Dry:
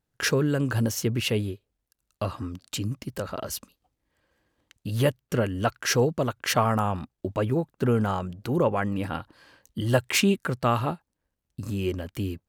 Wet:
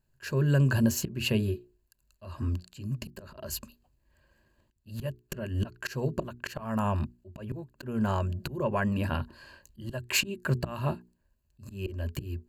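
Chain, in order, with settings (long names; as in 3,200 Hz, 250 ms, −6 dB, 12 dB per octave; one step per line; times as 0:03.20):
downward compressor 1.5 to 1, threshold −29 dBFS, peak gain reduction 5 dB
EQ curve with evenly spaced ripples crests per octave 1.4, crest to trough 10 dB
volume swells 303 ms
low-shelf EQ 110 Hz +11.5 dB
mains-hum notches 60/120/180/240/300/360/420 Hz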